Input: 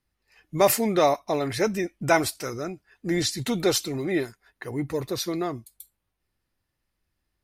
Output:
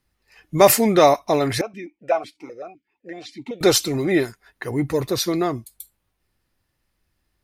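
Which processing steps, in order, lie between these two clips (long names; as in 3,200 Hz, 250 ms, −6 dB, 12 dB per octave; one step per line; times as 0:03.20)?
0:01.61–0:03.61: formant filter that steps through the vowels 7.9 Hz
level +6.5 dB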